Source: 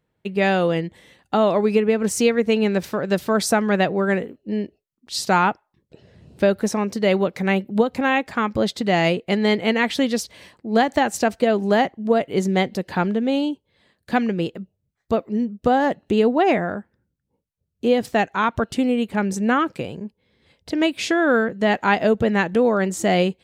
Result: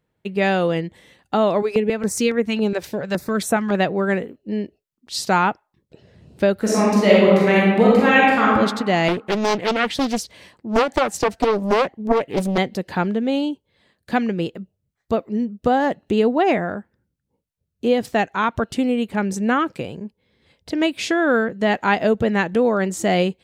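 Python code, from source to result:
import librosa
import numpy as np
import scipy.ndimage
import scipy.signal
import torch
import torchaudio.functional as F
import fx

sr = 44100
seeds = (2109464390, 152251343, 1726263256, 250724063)

y = fx.filter_held_notch(x, sr, hz=7.2, low_hz=200.0, high_hz=4800.0, at=(1.62, 3.75))
y = fx.reverb_throw(y, sr, start_s=6.59, length_s=1.94, rt60_s=1.3, drr_db=-5.5)
y = fx.doppler_dist(y, sr, depth_ms=0.95, at=(9.08, 12.58))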